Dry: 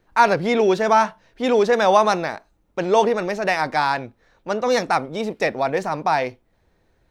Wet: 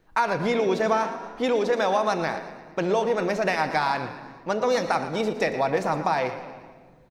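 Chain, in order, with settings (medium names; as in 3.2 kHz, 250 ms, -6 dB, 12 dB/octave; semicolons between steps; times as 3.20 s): compression, threshold -20 dBFS, peak gain reduction 10.5 dB; on a send: frequency-shifting echo 116 ms, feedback 51%, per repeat +36 Hz, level -13 dB; on the sum: simulated room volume 2400 m³, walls mixed, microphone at 0.63 m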